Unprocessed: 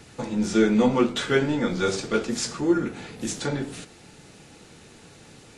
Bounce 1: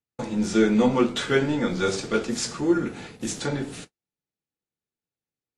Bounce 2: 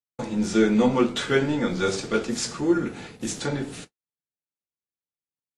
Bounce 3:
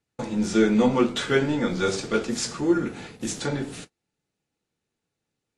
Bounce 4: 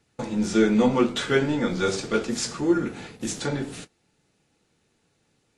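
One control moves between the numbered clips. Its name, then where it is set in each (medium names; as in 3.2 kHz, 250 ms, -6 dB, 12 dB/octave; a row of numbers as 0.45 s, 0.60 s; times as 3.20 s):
gate, range: -47 dB, -59 dB, -34 dB, -20 dB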